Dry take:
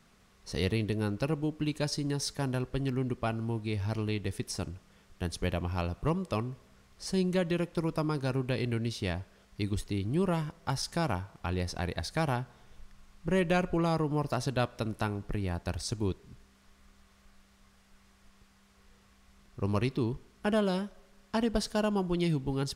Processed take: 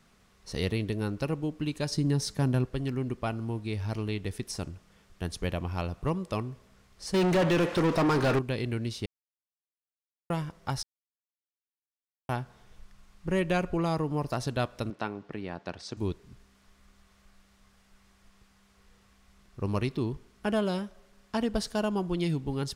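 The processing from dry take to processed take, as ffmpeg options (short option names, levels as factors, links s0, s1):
-filter_complex "[0:a]asettb=1/sr,asplit=3[s0][s1][s2];[s0]atrim=end=1.904[s3];[s1]atrim=start=1.9:end=2.66,asetpts=PTS-STARTPTS,afade=t=in:d=0.004:c=qsin,afade=t=out:st=0.756:d=0.004:c=qsin,equalizer=f=160:t=o:w=2.3:g=7.5[s4];[s2]atrim=start=2.656[s5];[s3][s4]acrossfade=d=0.004:c1=hsin:c2=qsin[s6];[s6][s5]acrossfade=d=0.004:c1=qsin:c2=hsin,asettb=1/sr,asplit=3[s7][s8][s9];[s7]atrim=end=7.144[s10];[s8]atrim=start=7.14:end=8.39,asetpts=PTS-STARTPTS,afade=t=in:d=0.004:c=qsin,afade=t=out:st=1.246:d=0.004:c=qsin,asplit=2[s11][s12];[s12]highpass=f=720:p=1,volume=44.7,asoftclip=type=tanh:threshold=0.141[s13];[s11][s13]amix=inputs=2:normalize=0,lowpass=f=2000:p=1,volume=0.501[s14];[s9]atrim=start=8.386[s15];[s10][s14]acrossfade=d=0.004:c1=hsin:c2=qsin[s16];[s16][s15]acrossfade=d=0.004:c1=qsin:c2=hsin,asettb=1/sr,asplit=3[s17][s18][s19];[s17]atrim=end=14.904[s20];[s18]atrim=start=14.9:end=15.97,asetpts=PTS-STARTPTS,afade=t=in:d=0.004:c=qsin,afade=t=out:st=1.066:d=0.004:c=qsin,highpass=200,lowpass=4200[s21];[s19]atrim=start=15.966[s22];[s20][s21]acrossfade=d=0.004:c1=hsin:c2=qsin[s23];[s23][s22]acrossfade=d=0.004:c1=qsin:c2=hsin,asplit=5[s24][s25][s26][s27][s28];[s24]atrim=end=9.06,asetpts=PTS-STARTPTS,afade=t=out:st=9.056:d=0.004:c=hsin[s29];[s25]atrim=start=9.06:end=10.3,asetpts=PTS-STARTPTS,volume=0[s30];[s26]atrim=start=10.3:end=10.83,asetpts=PTS-STARTPTS,afade=t=in:d=0.004:c=hsin,afade=t=out:st=0.526:d=0.004:c=hsin[s31];[s27]atrim=start=10.83:end=12.29,asetpts=PTS-STARTPTS,volume=0[s32];[s28]atrim=start=12.29,asetpts=PTS-STARTPTS,afade=t=in:d=0.004:c=hsin[s33];[s29][s30][s31][s32][s33]concat=n=5:v=0:a=1"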